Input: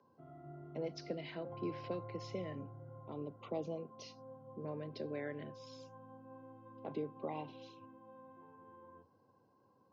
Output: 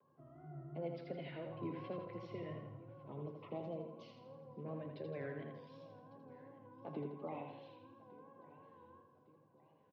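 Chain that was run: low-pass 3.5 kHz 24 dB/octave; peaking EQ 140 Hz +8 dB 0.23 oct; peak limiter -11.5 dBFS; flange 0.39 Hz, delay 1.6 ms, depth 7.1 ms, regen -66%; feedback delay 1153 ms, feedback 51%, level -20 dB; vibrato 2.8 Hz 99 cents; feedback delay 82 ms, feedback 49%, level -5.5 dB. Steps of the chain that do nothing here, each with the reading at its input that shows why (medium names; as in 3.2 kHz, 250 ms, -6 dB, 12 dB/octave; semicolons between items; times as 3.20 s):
peak limiter -11.5 dBFS: peak at its input -27.0 dBFS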